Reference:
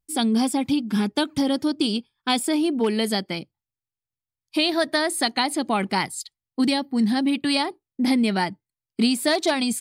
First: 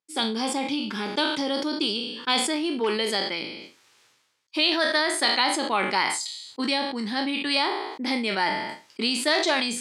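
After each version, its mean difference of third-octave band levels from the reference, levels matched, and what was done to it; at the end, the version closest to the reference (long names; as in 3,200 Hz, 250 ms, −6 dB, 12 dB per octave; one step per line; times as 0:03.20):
7.0 dB: peak hold with a decay on every bin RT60 0.31 s
band-pass filter 420–5,800 Hz
parametric band 700 Hz −8.5 dB 0.23 octaves
level that may fall only so fast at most 44 dB per second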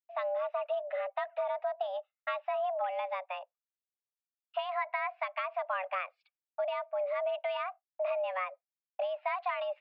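15.5 dB: noise gate with hold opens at −39 dBFS
dynamic equaliser 1,600 Hz, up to +4 dB, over −43 dBFS, Q 6.9
downward compressor, threshold −22 dBFS, peak gain reduction 7 dB
single-sideband voice off tune +370 Hz 200–2,400 Hz
level −7 dB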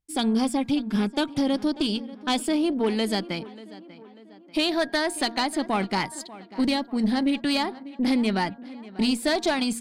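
3.5 dB: high-shelf EQ 10,000 Hz −10.5 dB
hum removal 233.5 Hz, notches 7
tube saturation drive 15 dB, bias 0.35
on a send: tape delay 590 ms, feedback 55%, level −16.5 dB, low-pass 2,800 Hz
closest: third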